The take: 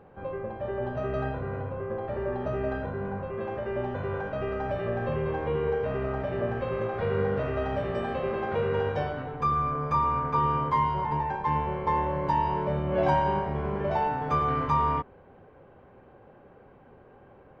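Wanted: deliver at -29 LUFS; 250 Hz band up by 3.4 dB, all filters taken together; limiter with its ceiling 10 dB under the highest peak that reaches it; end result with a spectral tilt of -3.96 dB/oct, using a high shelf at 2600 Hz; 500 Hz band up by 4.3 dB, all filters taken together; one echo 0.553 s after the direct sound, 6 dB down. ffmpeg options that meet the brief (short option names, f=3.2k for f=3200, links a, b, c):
-af "equalizer=f=250:t=o:g=3.5,equalizer=f=500:t=o:g=4,highshelf=f=2.6k:g=5,alimiter=limit=-20dB:level=0:latency=1,aecho=1:1:553:0.501,volume=-1dB"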